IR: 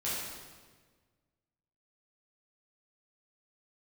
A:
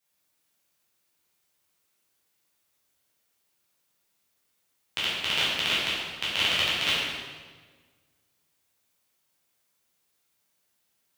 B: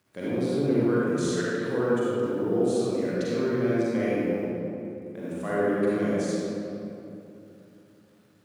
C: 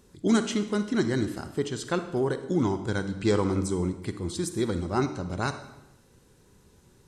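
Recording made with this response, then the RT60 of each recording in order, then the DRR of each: A; 1.5 s, 2.9 s, 0.90 s; -9.5 dB, -9.0 dB, 9.0 dB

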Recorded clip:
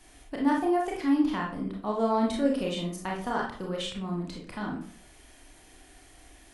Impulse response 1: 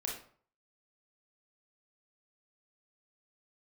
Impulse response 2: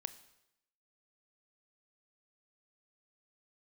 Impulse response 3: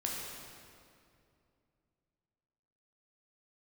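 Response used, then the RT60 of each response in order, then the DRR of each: 1; 0.50 s, 0.85 s, 2.5 s; -2.0 dB, 12.5 dB, -3.0 dB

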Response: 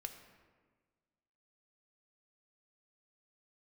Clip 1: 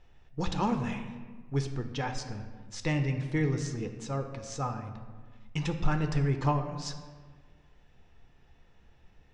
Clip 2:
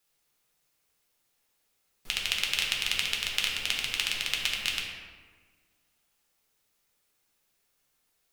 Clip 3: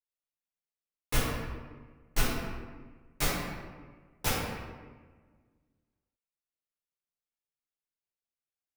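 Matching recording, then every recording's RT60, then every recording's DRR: 1; 1.5 s, 1.5 s, 1.5 s; 6.0 dB, -2.0 dB, -10.5 dB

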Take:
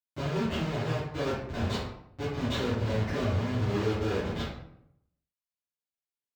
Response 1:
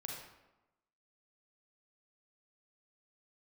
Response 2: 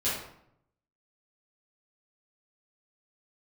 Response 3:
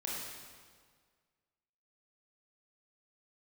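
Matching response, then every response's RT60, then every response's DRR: 2; 1.0 s, 0.70 s, 1.7 s; -1.5 dB, -11.5 dB, -5.0 dB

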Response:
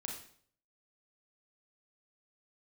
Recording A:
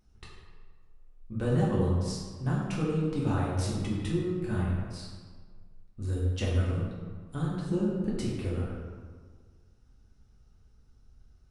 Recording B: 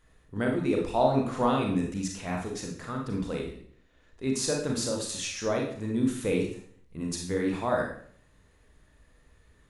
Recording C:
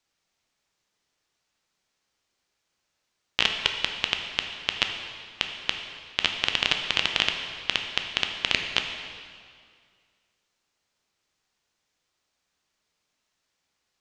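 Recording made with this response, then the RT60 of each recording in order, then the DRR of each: B; 1.6 s, 0.55 s, 2.1 s; -6.0 dB, 0.0 dB, 3.5 dB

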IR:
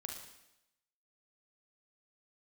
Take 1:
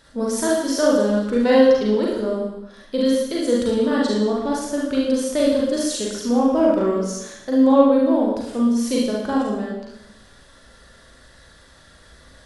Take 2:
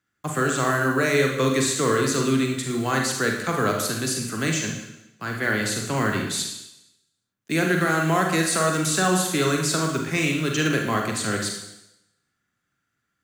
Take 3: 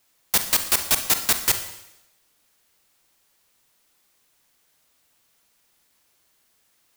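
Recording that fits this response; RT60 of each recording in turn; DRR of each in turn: 2; 0.90 s, 0.90 s, 0.90 s; -4.5 dB, 1.0 dB, 7.5 dB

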